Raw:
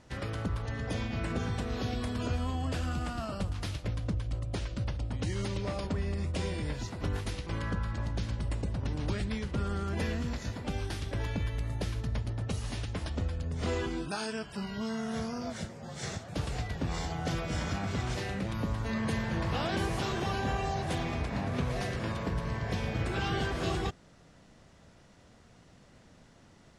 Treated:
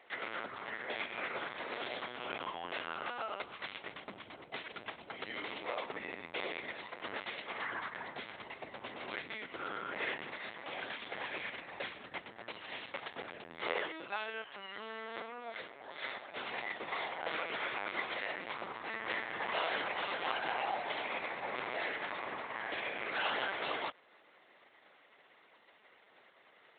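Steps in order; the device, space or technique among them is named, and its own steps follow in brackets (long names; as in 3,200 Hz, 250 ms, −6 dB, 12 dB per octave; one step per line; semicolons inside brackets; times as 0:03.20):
talking toy (linear-prediction vocoder at 8 kHz; high-pass filter 650 Hz 12 dB per octave; parametric band 2,100 Hz +6 dB 0.26 octaves)
level +1 dB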